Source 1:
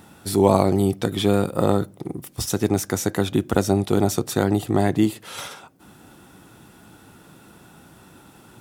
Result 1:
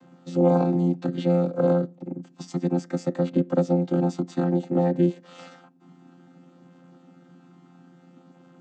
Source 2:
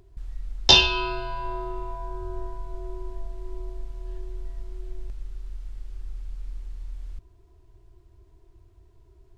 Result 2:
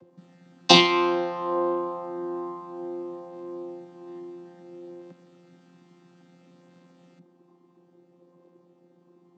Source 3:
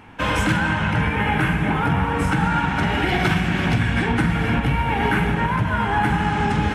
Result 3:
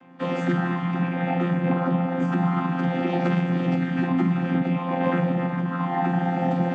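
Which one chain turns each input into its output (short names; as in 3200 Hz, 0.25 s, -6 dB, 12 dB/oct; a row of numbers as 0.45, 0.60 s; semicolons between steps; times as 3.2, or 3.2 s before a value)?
chord vocoder bare fifth, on F3; dynamic EQ 500 Hz, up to +4 dB, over -32 dBFS, Q 1.3; match loudness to -24 LUFS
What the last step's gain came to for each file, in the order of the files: -3.0, +1.5, -2.5 dB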